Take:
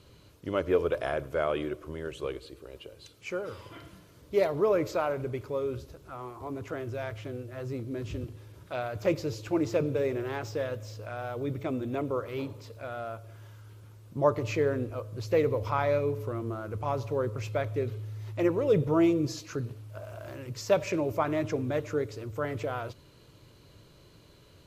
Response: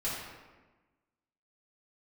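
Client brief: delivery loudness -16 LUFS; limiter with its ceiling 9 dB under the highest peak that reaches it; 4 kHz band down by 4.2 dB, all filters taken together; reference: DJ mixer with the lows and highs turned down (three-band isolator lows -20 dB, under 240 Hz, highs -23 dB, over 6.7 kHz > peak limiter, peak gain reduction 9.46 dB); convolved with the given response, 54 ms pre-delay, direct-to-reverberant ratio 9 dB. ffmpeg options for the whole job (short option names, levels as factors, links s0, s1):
-filter_complex "[0:a]equalizer=f=4000:t=o:g=-4.5,alimiter=limit=0.0944:level=0:latency=1,asplit=2[s0][s1];[1:a]atrim=start_sample=2205,adelay=54[s2];[s1][s2]afir=irnorm=-1:irlink=0,volume=0.188[s3];[s0][s3]amix=inputs=2:normalize=0,acrossover=split=240 6700:gain=0.1 1 0.0708[s4][s5][s6];[s4][s5][s6]amix=inputs=3:normalize=0,volume=13.3,alimiter=limit=0.531:level=0:latency=1"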